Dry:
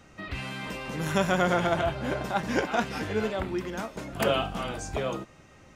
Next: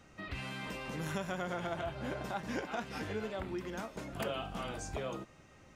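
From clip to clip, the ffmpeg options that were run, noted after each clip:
ffmpeg -i in.wav -af "acompressor=threshold=-30dB:ratio=3,volume=-5.5dB" out.wav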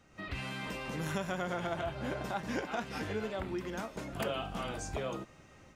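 ffmpeg -i in.wav -af "dynaudnorm=framelen=100:gausssize=3:maxgain=6.5dB,volume=-4.5dB" out.wav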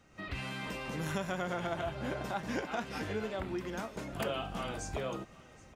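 ffmpeg -i in.wav -af "aecho=1:1:771:0.0841" out.wav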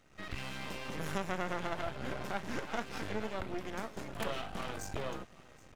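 ffmpeg -i in.wav -af "aeval=exprs='max(val(0),0)':channel_layout=same,volume=2dB" out.wav

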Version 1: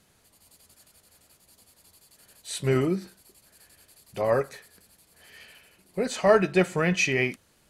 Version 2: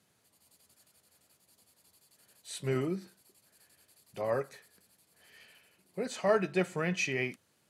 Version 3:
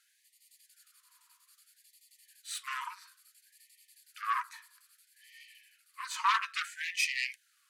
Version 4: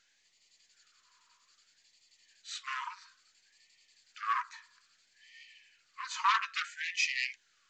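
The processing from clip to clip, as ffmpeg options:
ffmpeg -i in.wav -af "highpass=frequency=91:width=0.5412,highpass=frequency=91:width=1.3066,volume=-8dB" out.wav
ffmpeg -i in.wav -af "aeval=exprs='0.188*(cos(1*acos(clip(val(0)/0.188,-1,1)))-cos(1*PI/2))+0.0473*(cos(3*acos(clip(val(0)/0.188,-1,1)))-cos(3*PI/2))+0.0596*(cos(5*acos(clip(val(0)/0.188,-1,1)))-cos(5*PI/2))+0.0668*(cos(6*acos(clip(val(0)/0.188,-1,1)))-cos(6*PI/2))':channel_layout=same,equalizer=frequency=950:width=2.3:gain=10.5,afftfilt=real='re*gte(b*sr/1024,900*pow(1800/900,0.5+0.5*sin(2*PI*0.6*pts/sr)))':imag='im*gte(b*sr/1024,900*pow(1800/900,0.5+0.5*sin(2*PI*0.6*pts/sr)))':win_size=1024:overlap=0.75,volume=-2.5dB" out.wav
ffmpeg -i in.wav -ar 16000 -c:a pcm_mulaw out.wav

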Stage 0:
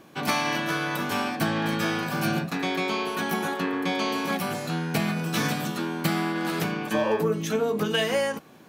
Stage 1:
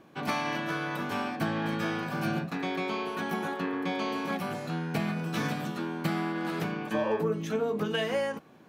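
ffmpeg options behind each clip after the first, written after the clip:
ffmpeg -i in.wav -af "highshelf=frequency=4000:gain=-10,volume=-4dB" out.wav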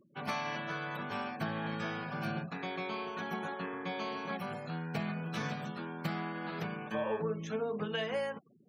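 ffmpeg -i in.wav -af "afftfilt=real='re*gte(hypot(re,im),0.00562)':imag='im*gte(hypot(re,im),0.00562)':win_size=1024:overlap=0.75,equalizer=frequency=300:width=4.6:gain=-11,volume=-5dB" out.wav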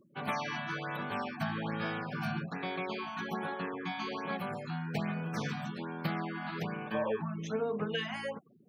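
ffmpeg -i in.wav -af "afftfilt=real='re*(1-between(b*sr/1024,400*pow(7900/400,0.5+0.5*sin(2*PI*1.2*pts/sr))/1.41,400*pow(7900/400,0.5+0.5*sin(2*PI*1.2*pts/sr))*1.41))':imag='im*(1-between(b*sr/1024,400*pow(7900/400,0.5+0.5*sin(2*PI*1.2*pts/sr))/1.41,400*pow(7900/400,0.5+0.5*sin(2*PI*1.2*pts/sr))*1.41))':win_size=1024:overlap=0.75,volume=2dB" out.wav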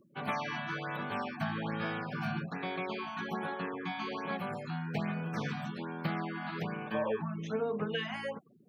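ffmpeg -i in.wav -filter_complex "[0:a]acrossover=split=4200[link_01][link_02];[link_02]acompressor=threshold=-58dB:ratio=4:attack=1:release=60[link_03];[link_01][link_03]amix=inputs=2:normalize=0" out.wav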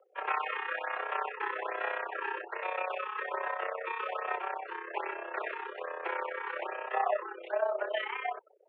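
ffmpeg -i in.wav -af "tremolo=f=32:d=0.71,highpass=frequency=290:width_type=q:width=0.5412,highpass=frequency=290:width_type=q:width=1.307,lowpass=frequency=2600:width_type=q:width=0.5176,lowpass=frequency=2600:width_type=q:width=0.7071,lowpass=frequency=2600:width_type=q:width=1.932,afreqshift=180,volume=6.5dB" out.wav

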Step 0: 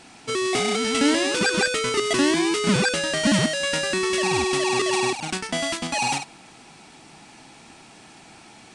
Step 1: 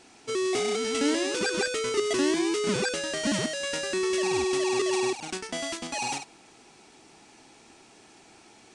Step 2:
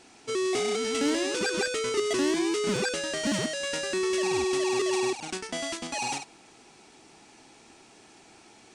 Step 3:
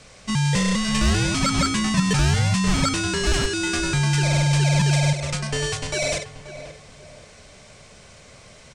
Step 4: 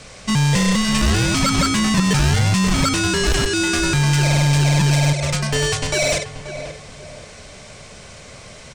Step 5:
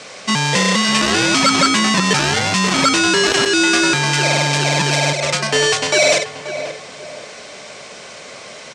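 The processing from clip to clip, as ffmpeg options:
ffmpeg -i in.wav -af "equalizer=frequency=160:width_type=o:width=0.67:gain=-5,equalizer=frequency=400:width_type=o:width=0.67:gain=7,equalizer=frequency=6300:width_type=o:width=0.67:gain=4,volume=-8dB" out.wav
ffmpeg -i in.wav -af "asoftclip=type=tanh:threshold=-16dB" out.wav
ffmpeg -i in.wav -filter_complex "[0:a]asplit=2[link_01][link_02];[link_02]adelay=532,lowpass=frequency=1600:poles=1,volume=-11dB,asplit=2[link_03][link_04];[link_04]adelay=532,lowpass=frequency=1600:poles=1,volume=0.37,asplit=2[link_05][link_06];[link_06]adelay=532,lowpass=frequency=1600:poles=1,volume=0.37,asplit=2[link_07][link_08];[link_08]adelay=532,lowpass=frequency=1600:poles=1,volume=0.37[link_09];[link_01][link_03][link_05][link_07][link_09]amix=inputs=5:normalize=0,afreqshift=-230,volume=7dB" out.wav
ffmpeg -i in.wav -filter_complex "[0:a]asplit=2[link_01][link_02];[link_02]alimiter=limit=-18dB:level=0:latency=1:release=204,volume=2.5dB[link_03];[link_01][link_03]amix=inputs=2:normalize=0,aeval=exprs='clip(val(0),-1,0.188)':channel_layout=same" out.wav
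ffmpeg -i in.wav -af "highpass=300,lowpass=7200,volume=6.5dB" out.wav

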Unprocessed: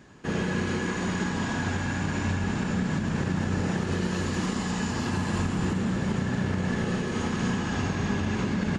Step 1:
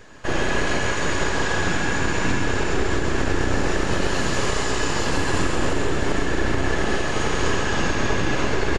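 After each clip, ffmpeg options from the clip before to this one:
ffmpeg -i in.wav -filter_complex "[0:a]acrossover=split=720[link_01][link_02];[link_01]aeval=exprs='abs(val(0))':channel_layout=same[link_03];[link_02]aecho=1:1:134:0.596[link_04];[link_03][link_04]amix=inputs=2:normalize=0,volume=8dB" out.wav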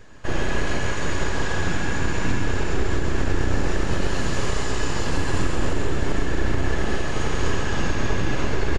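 ffmpeg -i in.wav -af "lowshelf=frequency=160:gain=8,volume=-4.5dB" out.wav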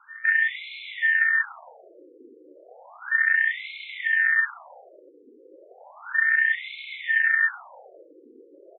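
ffmpeg -i in.wav -filter_complex "[0:a]acrossover=split=420|1300[link_01][link_02][link_03];[link_01]acompressor=threshold=-21dB:ratio=4[link_04];[link_02]acompressor=threshold=-47dB:ratio=4[link_05];[link_03]acompressor=threshold=-40dB:ratio=4[link_06];[link_04][link_05][link_06]amix=inputs=3:normalize=0,aeval=exprs='val(0)*sin(2*PI*1800*n/s)':channel_layout=same,afftfilt=real='re*between(b*sr/1024,360*pow(3000/360,0.5+0.5*sin(2*PI*0.33*pts/sr))/1.41,360*pow(3000/360,0.5+0.5*sin(2*PI*0.33*pts/sr))*1.41)':imag='im*between(b*sr/1024,360*pow(3000/360,0.5+0.5*sin(2*PI*0.33*pts/sr))/1.41,360*pow(3000/360,0.5+0.5*sin(2*PI*0.33*pts/sr))*1.41)':win_size=1024:overlap=0.75,volume=5dB" out.wav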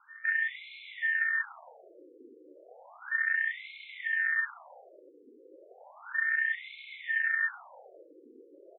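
ffmpeg -i in.wav -af "tiltshelf=frequency=1300:gain=3.5,volume=-7dB" out.wav

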